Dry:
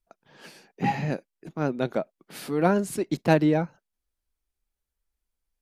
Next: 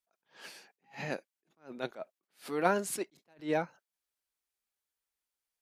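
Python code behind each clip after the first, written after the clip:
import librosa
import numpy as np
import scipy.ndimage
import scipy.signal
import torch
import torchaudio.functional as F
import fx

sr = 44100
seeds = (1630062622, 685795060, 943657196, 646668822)

y = fx.highpass(x, sr, hz=820.0, slope=6)
y = fx.attack_slew(y, sr, db_per_s=220.0)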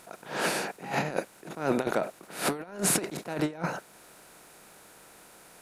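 y = fx.bin_compress(x, sr, power=0.6)
y = fx.low_shelf(y, sr, hz=180.0, db=8.5)
y = fx.over_compress(y, sr, threshold_db=-35.0, ratio=-0.5)
y = y * librosa.db_to_amplitude(7.0)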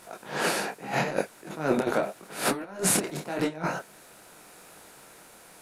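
y = fx.detune_double(x, sr, cents=29)
y = y * librosa.db_to_amplitude(6.0)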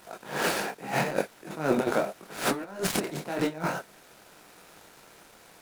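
y = fx.dead_time(x, sr, dead_ms=0.066)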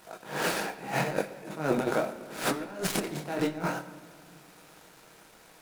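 y = fx.room_shoebox(x, sr, seeds[0], volume_m3=2900.0, walls='mixed', distance_m=0.58)
y = y * librosa.db_to_amplitude(-2.0)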